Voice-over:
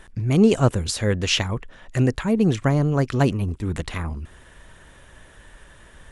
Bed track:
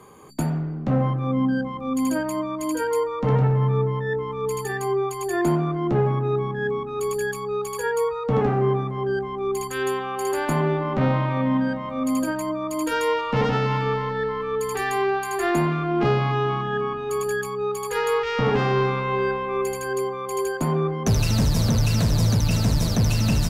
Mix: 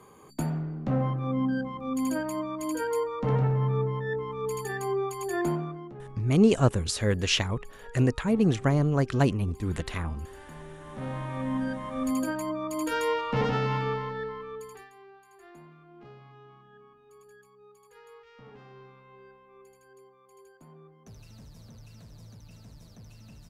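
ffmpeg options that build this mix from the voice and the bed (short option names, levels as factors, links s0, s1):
-filter_complex "[0:a]adelay=6000,volume=0.631[s0];[1:a]volume=4.47,afade=t=out:st=5.38:d=0.55:silence=0.125893,afade=t=in:st=10.77:d=1.2:silence=0.11885,afade=t=out:st=13.77:d=1.13:silence=0.0595662[s1];[s0][s1]amix=inputs=2:normalize=0"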